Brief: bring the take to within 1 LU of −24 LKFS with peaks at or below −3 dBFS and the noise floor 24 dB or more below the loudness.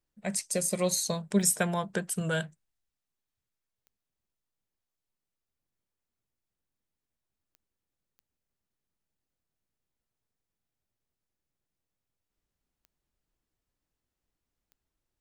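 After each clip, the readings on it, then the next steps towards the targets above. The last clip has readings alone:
number of clicks 6; integrated loudness −29.0 LKFS; sample peak −10.5 dBFS; target loudness −24.0 LKFS
→ click removal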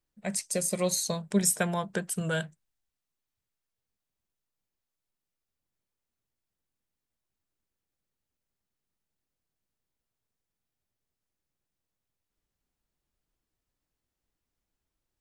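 number of clicks 0; integrated loudness −29.0 LKFS; sample peak −10.5 dBFS; target loudness −24.0 LKFS
→ level +5 dB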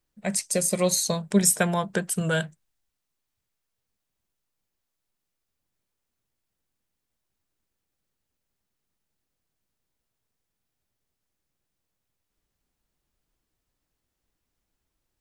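integrated loudness −24.0 LKFS; sample peak −5.5 dBFS; background noise floor −82 dBFS

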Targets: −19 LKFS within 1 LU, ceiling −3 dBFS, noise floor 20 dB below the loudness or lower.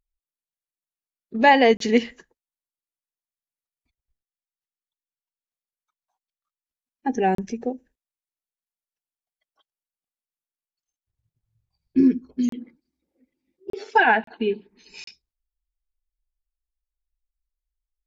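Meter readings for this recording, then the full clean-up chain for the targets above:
number of dropouts 6; longest dropout 33 ms; integrated loudness −21.0 LKFS; sample peak −4.0 dBFS; target loudness −19.0 LKFS
→ repair the gap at 0:01.77/0:07.35/0:12.49/0:13.70/0:14.24/0:15.04, 33 ms
level +2 dB
brickwall limiter −3 dBFS

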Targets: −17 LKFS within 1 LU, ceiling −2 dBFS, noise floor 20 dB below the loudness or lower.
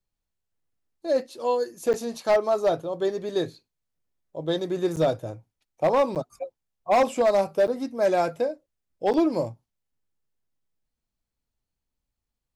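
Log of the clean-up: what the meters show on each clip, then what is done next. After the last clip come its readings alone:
share of clipped samples 1.0%; peaks flattened at −15.0 dBFS; number of dropouts 5; longest dropout 8.3 ms; integrated loudness −25.0 LKFS; sample peak −15.0 dBFS; target loudness −17.0 LKFS
→ clipped peaks rebuilt −15 dBFS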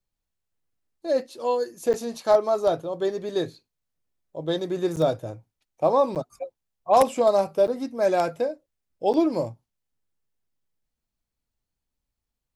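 share of clipped samples 0.0%; number of dropouts 5; longest dropout 8.3 ms
→ repair the gap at 0:01.93/0:04.96/0:06.15/0:07.67/0:09.13, 8.3 ms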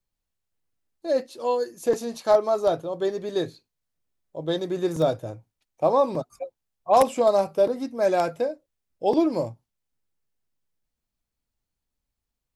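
number of dropouts 0; integrated loudness −24.5 LKFS; sample peak −6.0 dBFS; target loudness −17.0 LKFS
→ level +7.5 dB
brickwall limiter −2 dBFS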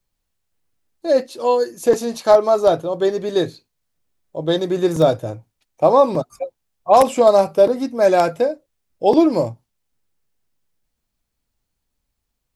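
integrated loudness −17.0 LKFS; sample peak −2.0 dBFS; background noise floor −77 dBFS

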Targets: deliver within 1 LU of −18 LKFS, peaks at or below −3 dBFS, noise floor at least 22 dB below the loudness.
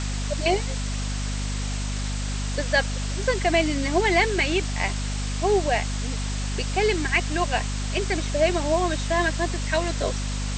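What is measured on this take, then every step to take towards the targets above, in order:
mains hum 50 Hz; hum harmonics up to 250 Hz; level of the hum −25 dBFS; background noise floor −28 dBFS; target noise floor −47 dBFS; integrated loudness −24.5 LKFS; sample peak −7.0 dBFS; target loudness −18.0 LKFS
→ mains-hum notches 50/100/150/200/250 Hz
noise reduction from a noise print 19 dB
level +6.5 dB
brickwall limiter −3 dBFS

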